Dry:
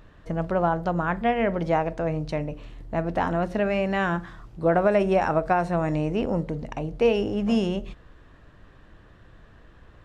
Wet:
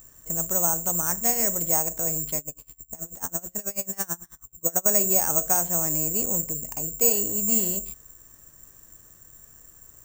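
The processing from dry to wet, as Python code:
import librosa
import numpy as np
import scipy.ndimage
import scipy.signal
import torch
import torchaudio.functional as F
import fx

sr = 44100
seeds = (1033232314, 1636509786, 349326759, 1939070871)

y = (np.kron(x[::6], np.eye(6)[0]) * 6)[:len(x)]
y = fx.tremolo_db(y, sr, hz=9.2, depth_db=27, at=(2.38, 4.86))
y = F.gain(torch.from_numpy(y), -8.0).numpy()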